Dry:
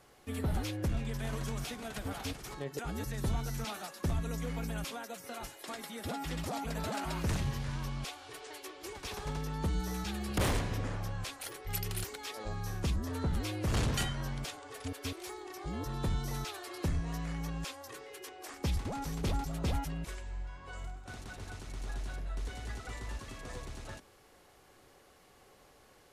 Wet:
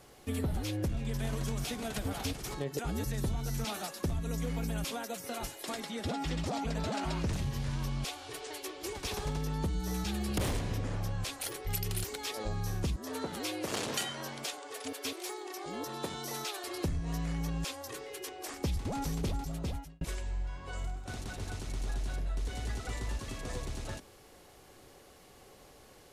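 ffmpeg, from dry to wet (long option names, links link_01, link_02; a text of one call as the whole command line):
ffmpeg -i in.wav -filter_complex "[0:a]asettb=1/sr,asplit=3[link_01][link_02][link_03];[link_01]atrim=end=5.804[link_04];[link_02]atrim=start=5.8:end=7.33,asetpts=PTS-STARTPTS,afade=type=in:duration=0.004:curve=qsin,afade=type=out:start_time=1.526:duration=0.004:curve=qsin,lowpass=6900[link_05];[link_03]atrim=start=7.326[link_06];[link_04][link_05]acrossfade=duration=0.004:curve1=hsin:curve2=qsin[link_07];[link_07][link_06]acrossfade=duration=0.004:curve1=qsin:curve2=hsin,asettb=1/sr,asplit=3[link_08][link_09][link_10];[link_08]atrim=end=12.964[link_11];[link_09]atrim=start=12.96:end=16.64,asetpts=PTS-STARTPTS,afade=type=in:duration=0.004:curve=qsin,afade=type=out:start_time=3.676:duration=0.004:curve=qsin,highpass=360[link_12];[link_10]atrim=start=16.636[link_13];[link_11][link_12]acrossfade=duration=0.004:curve1=hsin:curve2=qsin[link_14];[link_14][link_13]acrossfade=duration=0.004:curve1=qsin:curve2=hsin,asplit=2[link_15][link_16];[link_15]atrim=end=20.01,asetpts=PTS-STARTPTS,afade=type=out:start_time=19.12:duration=0.89[link_17];[link_16]atrim=start=20.01,asetpts=PTS-STARTPTS,afade=type=in:duration=0.004:curve=hsin[link_18];[link_17][link_18]concat=n=2:v=0:a=1,equalizer=frequency=1400:width=0.78:gain=-4.5,acompressor=threshold=-36dB:ratio=6,volume=6dB" out.wav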